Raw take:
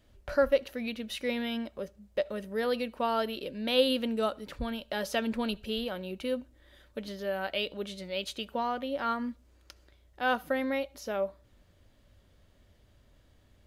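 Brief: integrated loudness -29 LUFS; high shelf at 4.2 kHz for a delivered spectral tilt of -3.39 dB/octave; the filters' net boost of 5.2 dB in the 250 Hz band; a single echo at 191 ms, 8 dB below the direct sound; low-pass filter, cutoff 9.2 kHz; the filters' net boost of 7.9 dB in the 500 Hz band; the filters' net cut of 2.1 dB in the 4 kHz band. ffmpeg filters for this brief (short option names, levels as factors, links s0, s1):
-af "lowpass=9200,equalizer=f=250:t=o:g=4,equalizer=f=500:t=o:g=8,equalizer=f=4000:t=o:g=-7,highshelf=f=4200:g=7.5,aecho=1:1:191:0.398,volume=0.708"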